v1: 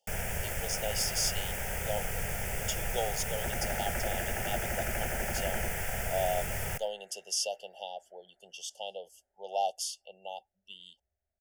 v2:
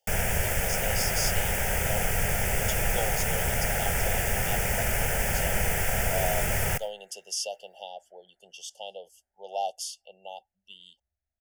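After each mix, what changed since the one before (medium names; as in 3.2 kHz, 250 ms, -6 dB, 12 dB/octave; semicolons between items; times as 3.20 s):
first sound +8.0 dB; second sound: add peaking EQ 490 Hz -12 dB 0.97 oct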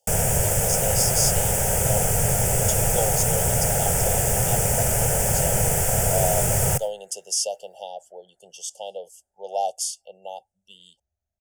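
master: add ten-band graphic EQ 125 Hz +11 dB, 500 Hz +7 dB, 1 kHz +4 dB, 2 kHz -7 dB, 8 kHz +11 dB, 16 kHz +4 dB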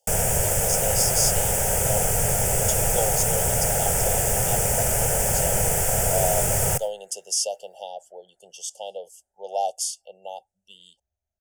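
master: add peaking EQ 130 Hz -4 dB 1.8 oct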